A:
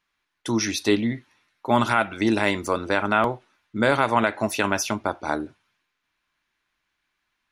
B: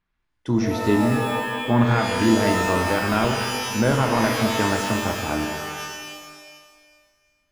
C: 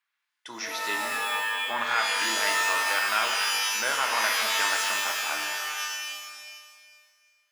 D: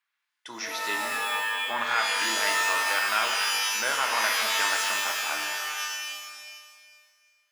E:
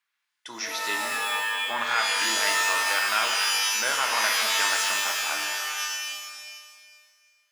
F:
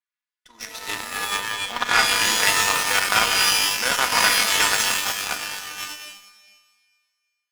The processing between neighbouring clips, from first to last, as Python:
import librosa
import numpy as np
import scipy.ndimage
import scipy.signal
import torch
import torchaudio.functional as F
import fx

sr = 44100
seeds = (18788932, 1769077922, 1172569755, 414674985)

y1 = fx.riaa(x, sr, side='playback')
y1 = fx.rev_shimmer(y1, sr, seeds[0], rt60_s=1.6, semitones=12, shimmer_db=-2, drr_db=3.5)
y1 = y1 * librosa.db_to_amplitude(-4.5)
y2 = scipy.signal.sosfilt(scipy.signal.butter(2, 1400.0, 'highpass', fs=sr, output='sos'), y1)
y2 = y2 * librosa.db_to_amplitude(3.0)
y3 = y2
y4 = fx.peak_eq(y3, sr, hz=6600.0, db=3.5, octaves=2.2)
y5 = y4 + 0.63 * np.pad(y4, (int(4.1 * sr / 1000.0), 0))[:len(y4)]
y5 = fx.cheby_harmonics(y5, sr, harmonics=(3, 6, 7, 8), levels_db=(-37, -27, -18, -27), full_scale_db=-8.5)
y5 = y5 * librosa.db_to_amplitude(6.5)